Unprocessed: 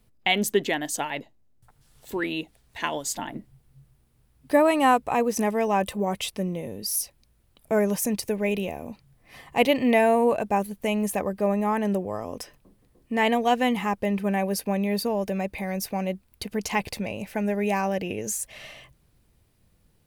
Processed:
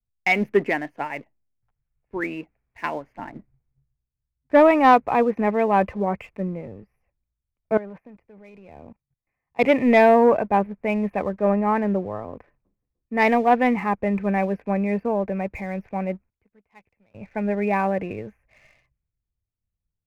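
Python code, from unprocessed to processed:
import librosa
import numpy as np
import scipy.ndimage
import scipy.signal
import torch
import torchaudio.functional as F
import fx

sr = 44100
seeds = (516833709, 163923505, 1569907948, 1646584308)

y = fx.level_steps(x, sr, step_db=19, at=(7.77, 9.64))
y = fx.edit(y, sr, fx.fade_down_up(start_s=16.11, length_s=1.22, db=-17.0, fade_s=0.19, curve='log'), tone=tone)
y = scipy.signal.sosfilt(scipy.signal.ellip(4, 1.0, 40, 2400.0, 'lowpass', fs=sr, output='sos'), y)
y = fx.leveller(y, sr, passes=1)
y = fx.band_widen(y, sr, depth_pct=70)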